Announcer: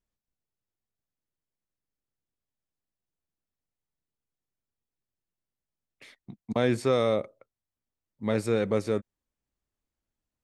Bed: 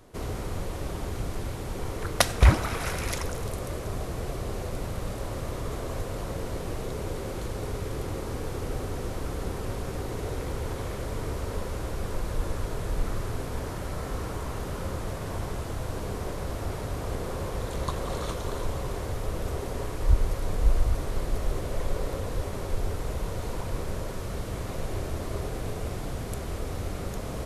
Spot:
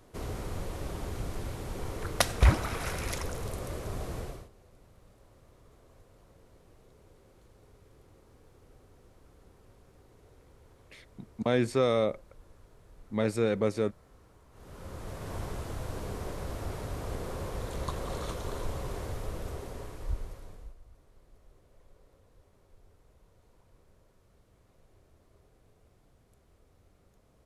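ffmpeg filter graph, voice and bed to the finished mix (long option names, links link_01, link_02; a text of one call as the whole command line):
ffmpeg -i stem1.wav -i stem2.wav -filter_complex "[0:a]adelay=4900,volume=-1.5dB[link_01];[1:a]volume=17.5dB,afade=type=out:start_time=4.17:duration=0.32:silence=0.0794328,afade=type=in:start_time=14.51:duration=0.87:silence=0.0841395,afade=type=out:start_time=19.03:duration=1.72:silence=0.0473151[link_02];[link_01][link_02]amix=inputs=2:normalize=0" out.wav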